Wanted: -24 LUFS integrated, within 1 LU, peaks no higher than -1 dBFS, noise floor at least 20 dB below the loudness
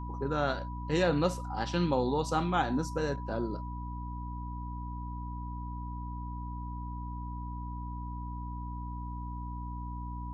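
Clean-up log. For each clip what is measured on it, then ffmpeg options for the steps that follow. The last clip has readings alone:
hum 60 Hz; harmonics up to 300 Hz; hum level -36 dBFS; steady tone 980 Hz; tone level -43 dBFS; loudness -34.5 LUFS; peak -14.5 dBFS; loudness target -24.0 LUFS
-> -af "bandreject=f=60:t=h:w=6,bandreject=f=120:t=h:w=6,bandreject=f=180:t=h:w=6,bandreject=f=240:t=h:w=6,bandreject=f=300:t=h:w=6"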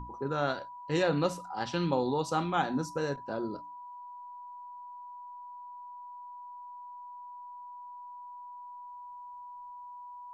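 hum none; steady tone 980 Hz; tone level -43 dBFS
-> -af "bandreject=f=980:w=30"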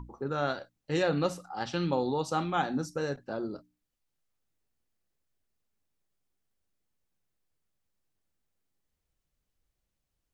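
steady tone none; loudness -32.0 LUFS; peak -14.5 dBFS; loudness target -24.0 LUFS
-> -af "volume=8dB"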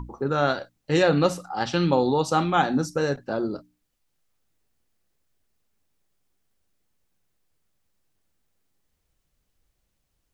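loudness -24.0 LUFS; peak -6.5 dBFS; noise floor -75 dBFS

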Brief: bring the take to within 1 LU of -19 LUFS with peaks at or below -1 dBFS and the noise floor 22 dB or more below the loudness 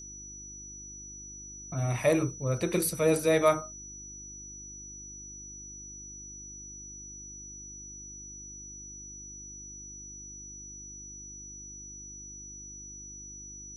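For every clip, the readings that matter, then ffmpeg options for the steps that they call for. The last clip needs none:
hum 50 Hz; harmonics up to 350 Hz; hum level -50 dBFS; steady tone 5900 Hz; tone level -43 dBFS; loudness -34.5 LUFS; peak -11.0 dBFS; loudness target -19.0 LUFS
-> -af "bandreject=f=50:t=h:w=4,bandreject=f=100:t=h:w=4,bandreject=f=150:t=h:w=4,bandreject=f=200:t=h:w=4,bandreject=f=250:t=h:w=4,bandreject=f=300:t=h:w=4,bandreject=f=350:t=h:w=4"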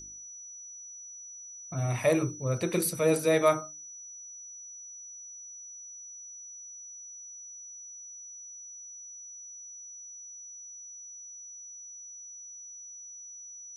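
hum none; steady tone 5900 Hz; tone level -43 dBFS
-> -af "bandreject=f=5.9k:w=30"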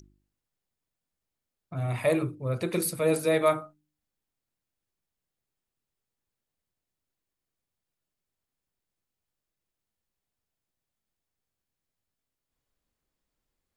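steady tone none; loudness -27.5 LUFS; peak -11.0 dBFS; loudness target -19.0 LUFS
-> -af "volume=8.5dB"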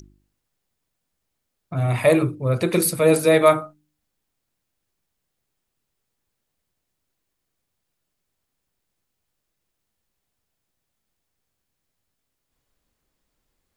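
loudness -19.0 LUFS; peak -2.5 dBFS; noise floor -79 dBFS

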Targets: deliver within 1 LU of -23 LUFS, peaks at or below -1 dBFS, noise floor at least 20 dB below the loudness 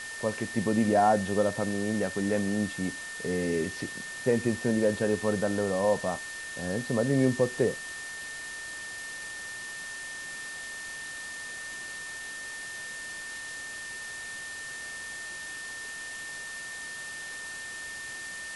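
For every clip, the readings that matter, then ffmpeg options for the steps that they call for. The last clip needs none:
steady tone 1800 Hz; tone level -38 dBFS; noise floor -40 dBFS; noise floor target -52 dBFS; loudness -31.5 LUFS; peak -12.0 dBFS; loudness target -23.0 LUFS
-> -af "bandreject=f=1.8k:w=30"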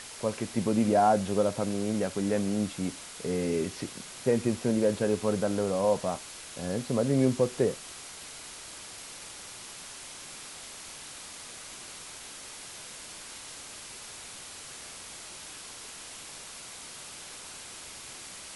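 steady tone none; noise floor -45 dBFS; noise floor target -52 dBFS
-> -af "afftdn=nr=7:nf=-45"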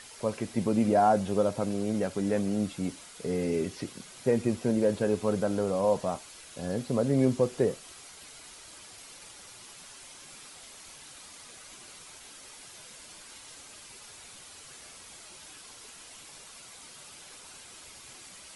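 noise floor -49 dBFS; loudness -28.5 LUFS; peak -12.0 dBFS; loudness target -23.0 LUFS
-> -af "volume=5.5dB"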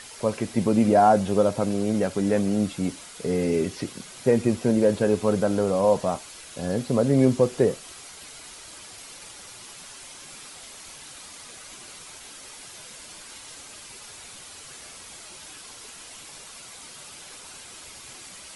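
loudness -23.0 LUFS; peak -6.5 dBFS; noise floor -44 dBFS

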